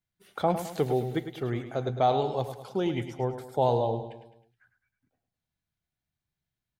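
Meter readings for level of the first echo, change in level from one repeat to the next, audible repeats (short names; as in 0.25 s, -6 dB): -10.0 dB, -6.5 dB, 4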